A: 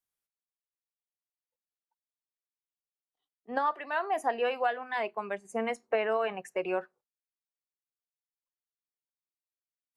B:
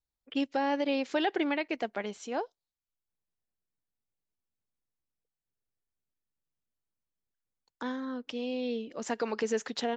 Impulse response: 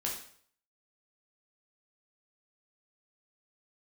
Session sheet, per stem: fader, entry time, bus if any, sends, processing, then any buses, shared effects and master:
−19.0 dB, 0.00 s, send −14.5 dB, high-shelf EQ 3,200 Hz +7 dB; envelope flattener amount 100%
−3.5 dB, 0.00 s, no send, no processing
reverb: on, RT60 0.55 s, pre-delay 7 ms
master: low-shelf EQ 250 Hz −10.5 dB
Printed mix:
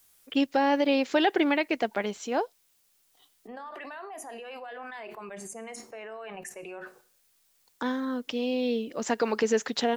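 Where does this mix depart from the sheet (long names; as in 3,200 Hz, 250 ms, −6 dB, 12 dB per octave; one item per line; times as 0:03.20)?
stem B −3.5 dB → +5.5 dB
master: missing low-shelf EQ 250 Hz −10.5 dB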